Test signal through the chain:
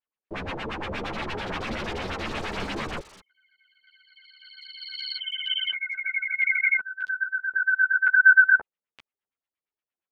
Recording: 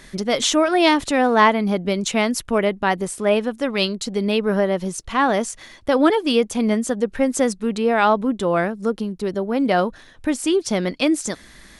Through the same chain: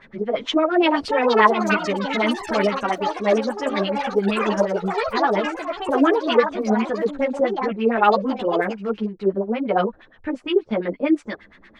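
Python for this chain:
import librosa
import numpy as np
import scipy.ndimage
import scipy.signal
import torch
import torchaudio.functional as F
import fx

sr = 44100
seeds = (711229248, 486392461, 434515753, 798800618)

y = fx.low_shelf(x, sr, hz=74.0, db=-7.5)
y = fx.filter_lfo_lowpass(y, sr, shape='sine', hz=8.6, low_hz=390.0, high_hz=2900.0, q=2.4)
y = fx.echo_pitch(y, sr, ms=714, semitones=6, count=3, db_per_echo=-6.0)
y = fx.ensemble(y, sr)
y = y * librosa.db_to_amplitude(-1.0)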